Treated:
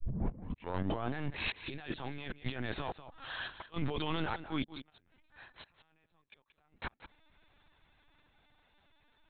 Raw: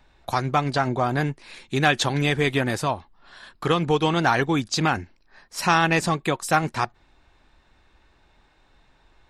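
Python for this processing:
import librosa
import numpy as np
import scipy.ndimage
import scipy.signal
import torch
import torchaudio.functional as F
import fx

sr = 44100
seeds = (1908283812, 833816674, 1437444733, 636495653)

y = fx.tape_start_head(x, sr, length_s=1.15)
y = fx.doppler_pass(y, sr, speed_mps=11, closest_m=7.9, pass_at_s=2.0)
y = fx.high_shelf(y, sr, hz=2600.0, db=8.5)
y = fx.over_compress(y, sr, threshold_db=-36.0, ratio=-1.0)
y = fx.clip_asym(y, sr, top_db=-31.5, bottom_db=-18.5)
y = fx.gate_flip(y, sr, shuts_db=-23.0, range_db=-40)
y = y + 10.0 ** (-13.0 / 20.0) * np.pad(y, (int(188 * sr / 1000.0), 0))[:len(y)]
y = fx.lpc_vocoder(y, sr, seeds[0], excitation='pitch_kept', order=16)
y = F.gain(torch.from_numpy(y), 1.0).numpy()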